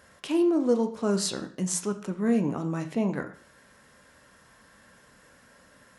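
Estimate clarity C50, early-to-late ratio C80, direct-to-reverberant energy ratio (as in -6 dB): 12.0 dB, 16.0 dB, 6.5 dB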